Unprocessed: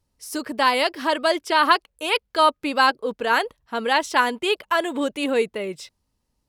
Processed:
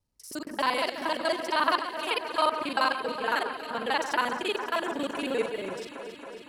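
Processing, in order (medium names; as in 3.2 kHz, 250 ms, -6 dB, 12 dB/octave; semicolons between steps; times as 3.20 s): time reversed locally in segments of 39 ms; echo whose repeats swap between lows and highs 137 ms, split 2.1 kHz, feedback 87%, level -9.5 dB; trim -7.5 dB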